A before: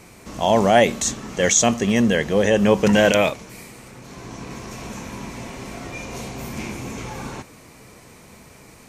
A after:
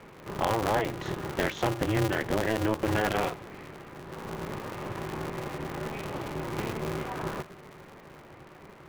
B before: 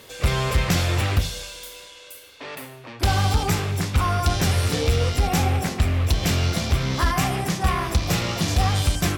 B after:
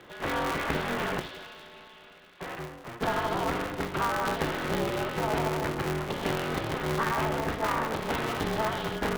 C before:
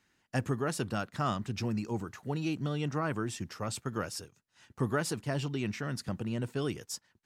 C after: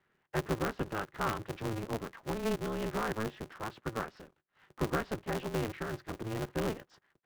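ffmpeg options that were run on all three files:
-af "highpass=f=240:w=0.5412,highpass=f=240:w=1.3066,equalizer=f=270:t=q:w=4:g=7,equalizer=f=530:t=q:w=4:g=-8,equalizer=f=2.4k:t=q:w=4:g=-9,lowpass=f=2.7k:w=0.5412,lowpass=f=2.7k:w=1.3066,acompressor=threshold=-24dB:ratio=5,aeval=exprs='val(0)*sgn(sin(2*PI*110*n/s))':c=same"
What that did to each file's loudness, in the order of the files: -12.5, -7.5, -2.0 LU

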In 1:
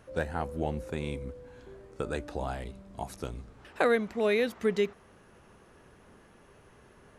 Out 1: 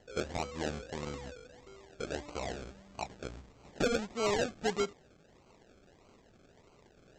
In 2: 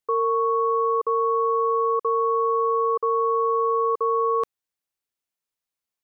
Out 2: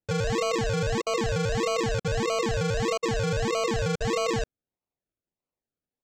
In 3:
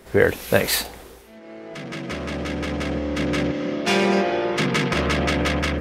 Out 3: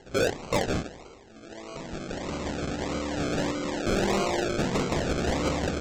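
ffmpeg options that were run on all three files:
-af "lowshelf=f=280:g=-6.5,aresample=16000,acrusher=samples=13:mix=1:aa=0.000001:lfo=1:lforange=7.8:lforate=1.6,aresample=44100,asoftclip=type=tanh:threshold=-16.5dB,volume=-2dB"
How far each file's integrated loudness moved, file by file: -5.0, -4.5, -6.5 LU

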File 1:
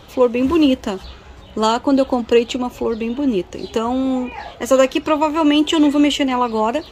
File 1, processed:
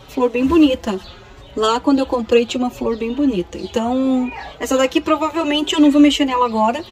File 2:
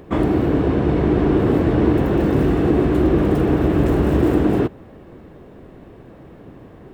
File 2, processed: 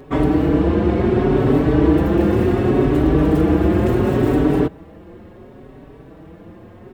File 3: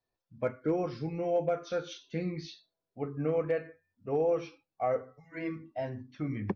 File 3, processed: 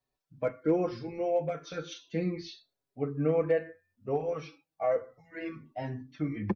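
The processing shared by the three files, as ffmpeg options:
-filter_complex "[0:a]asplit=2[a][b];[b]adelay=4.9,afreqshift=0.7[c];[a][c]amix=inputs=2:normalize=1,volume=4dB"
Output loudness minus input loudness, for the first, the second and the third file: +0.5, +1.0, +1.0 LU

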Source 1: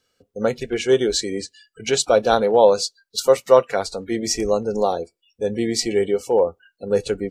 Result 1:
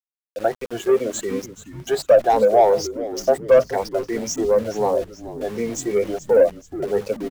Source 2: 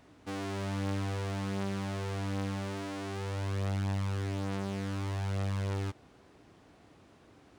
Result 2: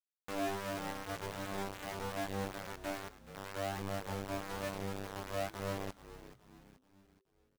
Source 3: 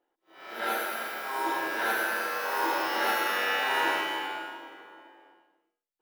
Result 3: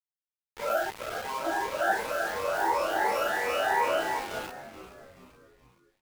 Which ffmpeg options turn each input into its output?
-filter_complex "[0:a]afftfilt=real='re*pow(10,18/40*sin(2*PI*(0.89*log(max(b,1)*sr/1024/100)/log(2)-(2.8)*(pts-256)/sr)))':imag='im*pow(10,18/40*sin(2*PI*(0.89*log(max(b,1)*sr/1024/100)/log(2)-(2.8)*(pts-256)/sr)))':win_size=1024:overlap=0.75,bandreject=f=50:t=h:w=6,bandreject=f=100:t=h:w=6,bandreject=f=150:t=h:w=6,bandreject=f=200:t=h:w=6,bandreject=f=250:t=h:w=6,afftdn=nr=20:nf=-32,equalizer=f=6k:w=0.94:g=4.5,acrossover=split=250[a][b];[a]flanger=delay=17.5:depth=3.1:speed=1.1[c];[b]asoftclip=type=tanh:threshold=-10dB[d];[c][d]amix=inputs=2:normalize=0,equalizer=f=160:t=o:w=0.67:g=5,equalizer=f=630:t=o:w=0.67:g=12,equalizer=f=4k:t=o:w=0.67:g=-11,equalizer=f=10k:t=o:w=0.67:g=-8,aeval=exprs='val(0)*gte(abs(val(0)),0.0376)':c=same,asplit=2[e][f];[f]asplit=4[g][h][i][j];[g]adelay=428,afreqshift=-130,volume=-14dB[k];[h]adelay=856,afreqshift=-260,volume=-20.9dB[l];[i]adelay=1284,afreqshift=-390,volume=-27.9dB[m];[j]adelay=1712,afreqshift=-520,volume=-34.8dB[n];[k][l][m][n]amix=inputs=4:normalize=0[o];[e][o]amix=inputs=2:normalize=0,volume=-6dB"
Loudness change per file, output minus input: 0.0, -5.5, 0.0 LU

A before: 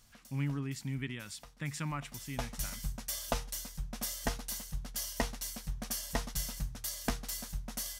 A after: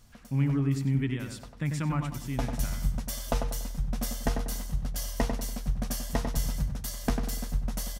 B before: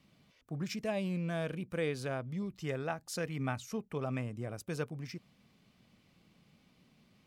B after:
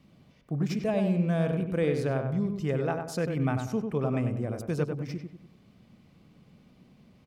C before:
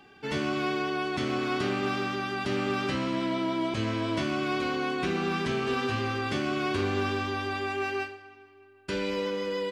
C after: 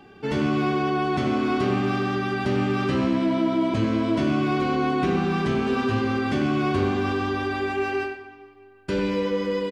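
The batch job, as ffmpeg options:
-filter_complex "[0:a]tiltshelf=f=970:g=4.5,asplit=2[a][b];[b]alimiter=limit=-22dB:level=0:latency=1:release=39,volume=-1.5dB[c];[a][c]amix=inputs=2:normalize=0,asplit=2[d][e];[e]adelay=96,lowpass=f=2k:p=1,volume=-5dB,asplit=2[f][g];[g]adelay=96,lowpass=f=2k:p=1,volume=0.41,asplit=2[h][i];[i]adelay=96,lowpass=f=2k:p=1,volume=0.41,asplit=2[j][k];[k]adelay=96,lowpass=f=2k:p=1,volume=0.41,asplit=2[l][m];[m]adelay=96,lowpass=f=2k:p=1,volume=0.41[n];[d][f][h][j][l][n]amix=inputs=6:normalize=0,volume=-1dB"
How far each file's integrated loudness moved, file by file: +6.5, +8.5, +5.5 LU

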